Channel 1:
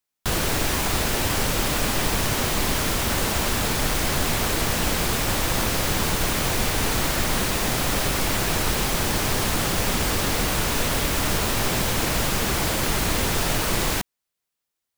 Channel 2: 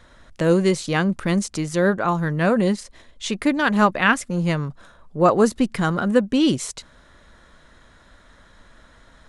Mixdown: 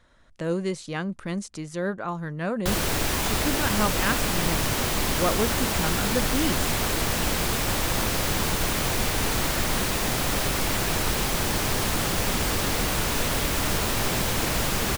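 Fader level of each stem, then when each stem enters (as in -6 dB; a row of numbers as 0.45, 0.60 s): -2.0, -9.5 dB; 2.40, 0.00 s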